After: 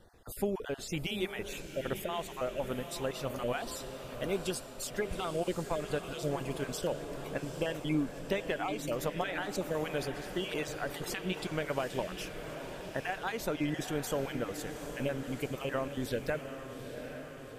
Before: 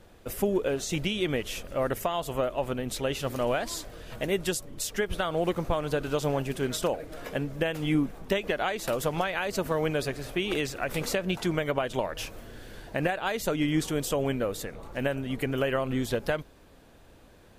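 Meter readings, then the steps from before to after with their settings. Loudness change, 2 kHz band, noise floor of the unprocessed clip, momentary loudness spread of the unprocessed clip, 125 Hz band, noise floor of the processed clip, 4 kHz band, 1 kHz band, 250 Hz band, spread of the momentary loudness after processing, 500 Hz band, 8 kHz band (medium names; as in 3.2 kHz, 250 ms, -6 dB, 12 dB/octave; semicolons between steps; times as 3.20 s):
-6.5 dB, -6.0 dB, -54 dBFS, 6 LU, -6.5 dB, -46 dBFS, -6.0 dB, -6.0 dB, -6.0 dB, 6 LU, -6.0 dB, -6.5 dB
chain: random holes in the spectrogram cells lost 28%; echo that smears into a reverb 817 ms, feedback 62%, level -9 dB; trim -5.5 dB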